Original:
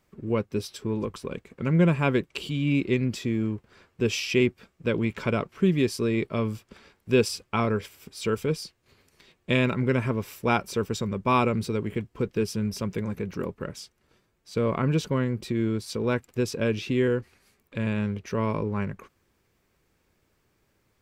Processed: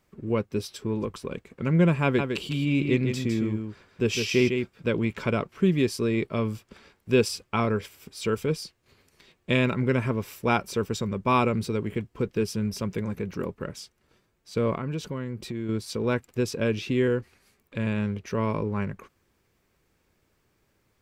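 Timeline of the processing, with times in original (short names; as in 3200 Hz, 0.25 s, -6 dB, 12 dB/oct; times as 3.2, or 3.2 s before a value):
2.03–4.98 echo 0.156 s -6 dB
14.75–15.69 compressor 2:1, threshold -33 dBFS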